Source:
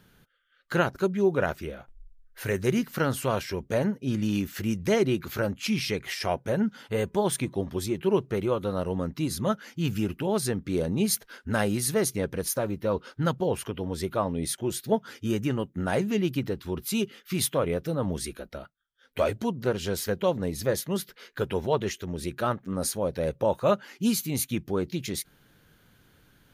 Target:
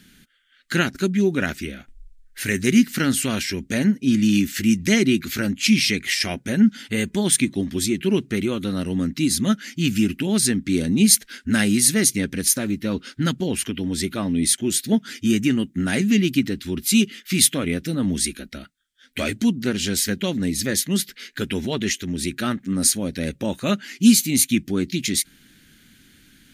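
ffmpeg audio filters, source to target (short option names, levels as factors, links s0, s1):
-af "equalizer=f=125:t=o:w=1:g=-6,equalizer=f=250:t=o:w=1:g=11,equalizer=f=500:t=o:w=1:g=-10,equalizer=f=1000:t=o:w=1:g=-12,equalizer=f=2000:t=o:w=1:g=8,equalizer=f=4000:t=o:w=1:g=4,equalizer=f=8000:t=o:w=1:g=9,volume=1.78"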